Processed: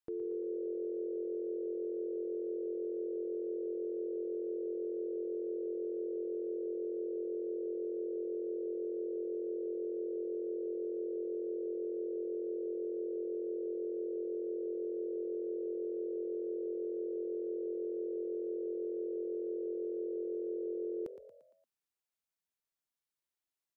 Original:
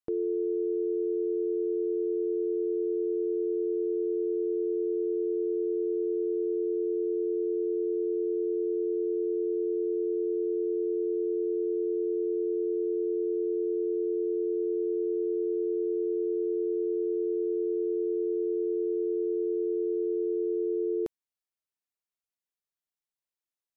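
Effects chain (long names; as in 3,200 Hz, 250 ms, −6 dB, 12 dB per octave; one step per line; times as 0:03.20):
brickwall limiter −31.5 dBFS, peak gain reduction 8.5 dB
on a send: echo with shifted repeats 115 ms, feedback 51%, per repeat +42 Hz, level −11.5 dB
on the sum: level −1 dB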